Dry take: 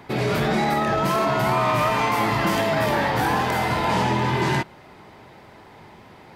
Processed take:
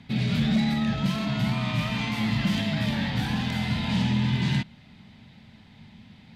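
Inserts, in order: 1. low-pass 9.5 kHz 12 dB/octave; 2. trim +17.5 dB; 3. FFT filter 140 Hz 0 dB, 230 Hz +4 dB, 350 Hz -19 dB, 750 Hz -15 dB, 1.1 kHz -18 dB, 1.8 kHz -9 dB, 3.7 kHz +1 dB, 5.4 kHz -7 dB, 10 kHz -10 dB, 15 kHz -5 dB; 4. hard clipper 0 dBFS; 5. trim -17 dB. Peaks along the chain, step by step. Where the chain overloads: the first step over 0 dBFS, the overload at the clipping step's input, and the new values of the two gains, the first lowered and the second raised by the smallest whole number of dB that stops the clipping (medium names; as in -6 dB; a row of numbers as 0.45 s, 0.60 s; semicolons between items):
-9.5 dBFS, +8.0 dBFS, +5.0 dBFS, 0.0 dBFS, -17.0 dBFS; step 2, 5.0 dB; step 2 +12.5 dB, step 5 -12 dB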